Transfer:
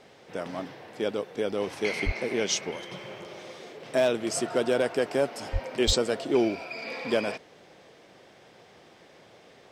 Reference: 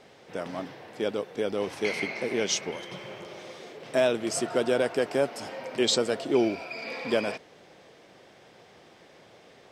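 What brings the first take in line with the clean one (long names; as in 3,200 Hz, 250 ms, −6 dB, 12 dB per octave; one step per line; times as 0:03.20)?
clipped peaks rebuilt −14.5 dBFS
high-pass at the plosives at 0:02.05/0:05.52/0:05.86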